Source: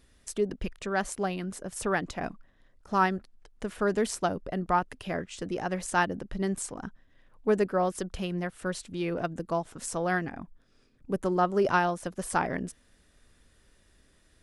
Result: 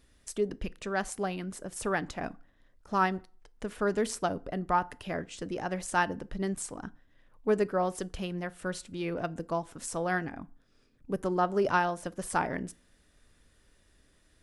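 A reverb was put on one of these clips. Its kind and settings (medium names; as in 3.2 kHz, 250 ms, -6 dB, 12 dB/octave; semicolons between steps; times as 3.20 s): FDN reverb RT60 0.42 s, low-frequency decay 1×, high-frequency decay 0.7×, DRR 17 dB; trim -2 dB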